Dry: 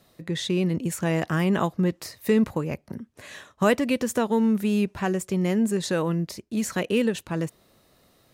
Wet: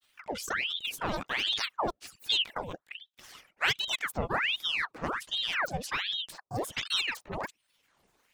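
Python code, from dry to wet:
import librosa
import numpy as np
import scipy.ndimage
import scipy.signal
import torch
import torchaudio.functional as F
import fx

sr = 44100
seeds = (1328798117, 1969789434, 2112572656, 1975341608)

y = fx.dereverb_blind(x, sr, rt60_s=0.53)
y = fx.granulator(y, sr, seeds[0], grain_ms=100.0, per_s=20.0, spray_ms=11.0, spread_st=12)
y = fx.ring_lfo(y, sr, carrier_hz=1900.0, swing_pct=85, hz=1.3)
y = y * librosa.db_to_amplitude(-3.5)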